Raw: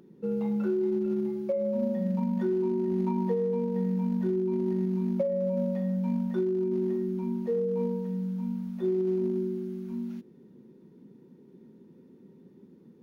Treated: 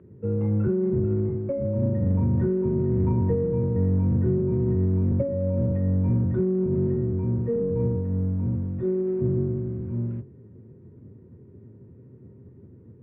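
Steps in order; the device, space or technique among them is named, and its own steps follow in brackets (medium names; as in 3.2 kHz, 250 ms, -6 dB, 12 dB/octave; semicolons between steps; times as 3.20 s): sub-octave bass pedal (octave divider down 1 oct, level +2 dB; cabinet simulation 66–2200 Hz, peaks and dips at 85 Hz +6 dB, 130 Hz +7 dB, 420 Hz +4 dB, 780 Hz -7 dB)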